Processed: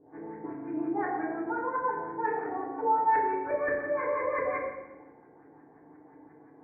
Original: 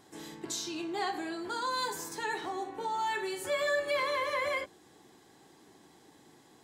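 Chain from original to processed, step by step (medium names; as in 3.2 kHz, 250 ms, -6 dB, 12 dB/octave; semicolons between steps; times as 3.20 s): LFO low-pass saw up 5.7 Hz 410–1800 Hz; rippled Chebyshev low-pass 2.4 kHz, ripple 3 dB; FDN reverb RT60 0.95 s, low-frequency decay 1.45×, high-frequency decay 1×, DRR -4.5 dB; trim -4 dB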